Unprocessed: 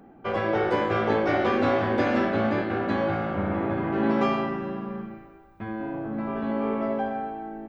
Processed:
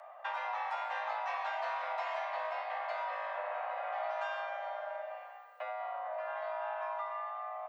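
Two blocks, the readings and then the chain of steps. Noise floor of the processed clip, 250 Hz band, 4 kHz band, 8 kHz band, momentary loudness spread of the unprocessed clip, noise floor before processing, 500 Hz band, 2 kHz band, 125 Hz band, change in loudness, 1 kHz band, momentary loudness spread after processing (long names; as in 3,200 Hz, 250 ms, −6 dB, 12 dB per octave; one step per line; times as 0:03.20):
−51 dBFS, below −40 dB, −10.0 dB, can't be measured, 11 LU, −51 dBFS, −14.0 dB, −8.5 dB, below −40 dB, −12.0 dB, −6.5 dB, 4 LU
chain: high-pass filter 160 Hz 12 dB per octave
downward compressor 3 to 1, threshold −39 dBFS, peak gain reduction 14.5 dB
frequency shifter +410 Hz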